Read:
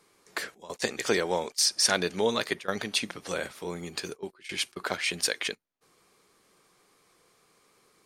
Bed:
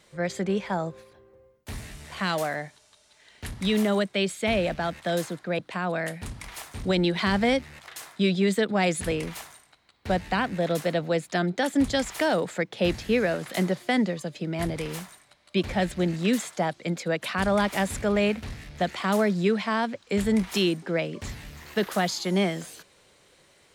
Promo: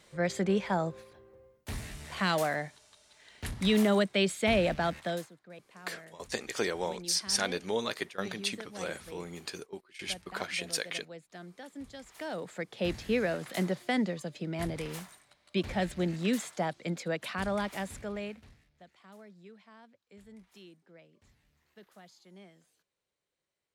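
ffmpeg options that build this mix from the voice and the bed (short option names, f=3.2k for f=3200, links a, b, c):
-filter_complex "[0:a]adelay=5500,volume=-5.5dB[a];[1:a]volume=14.5dB,afade=t=out:st=4.92:d=0.38:silence=0.1,afade=t=in:st=12.02:d=1.07:silence=0.158489,afade=t=out:st=16.98:d=1.73:silence=0.0630957[b];[a][b]amix=inputs=2:normalize=0"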